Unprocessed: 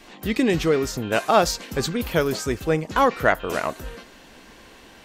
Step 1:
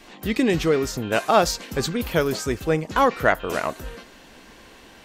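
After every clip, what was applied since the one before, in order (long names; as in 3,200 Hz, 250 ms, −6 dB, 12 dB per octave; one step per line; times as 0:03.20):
no processing that can be heard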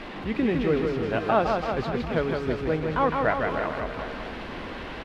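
linear delta modulator 64 kbit/s, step −25 dBFS
high-frequency loss of the air 370 metres
reverse bouncing-ball delay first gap 160 ms, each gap 1.1×, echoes 5
level −4 dB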